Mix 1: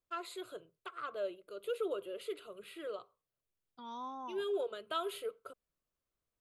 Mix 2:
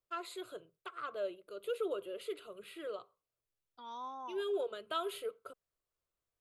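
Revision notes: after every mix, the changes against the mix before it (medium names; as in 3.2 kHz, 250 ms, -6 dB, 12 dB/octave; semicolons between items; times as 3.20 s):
second voice: add high-pass 380 Hz 12 dB/octave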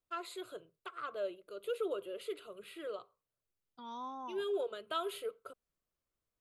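second voice: remove high-pass 380 Hz 12 dB/octave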